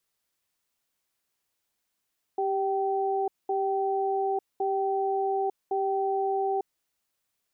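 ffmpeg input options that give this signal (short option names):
-f lavfi -i "aevalsrc='0.0447*(sin(2*PI*392*t)+sin(2*PI*773*t))*clip(min(mod(t,1.11),0.9-mod(t,1.11))/0.005,0,1)':d=4.4:s=44100"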